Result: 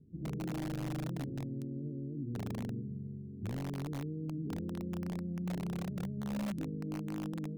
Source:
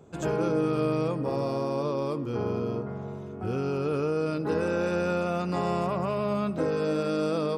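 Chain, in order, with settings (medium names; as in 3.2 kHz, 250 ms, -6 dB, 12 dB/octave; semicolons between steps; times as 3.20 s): inverse Chebyshev low-pass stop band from 950 Hz, stop band 60 dB; in parallel at -3.5 dB: integer overflow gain 26.5 dB; on the sum: trim -8.5 dB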